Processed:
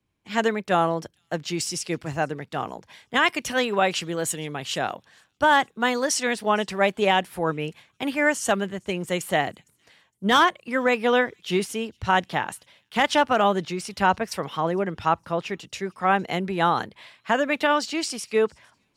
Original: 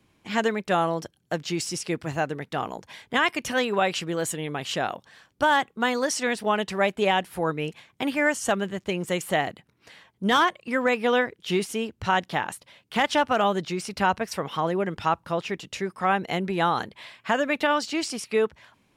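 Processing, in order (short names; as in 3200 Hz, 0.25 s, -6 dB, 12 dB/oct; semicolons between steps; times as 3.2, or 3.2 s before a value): thin delay 0.46 s, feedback 39%, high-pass 4400 Hz, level -23.5 dB; three-band expander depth 40%; gain +1.5 dB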